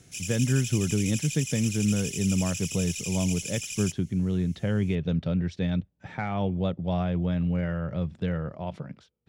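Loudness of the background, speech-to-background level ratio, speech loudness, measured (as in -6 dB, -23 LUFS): -33.5 LUFS, 5.0 dB, -28.5 LUFS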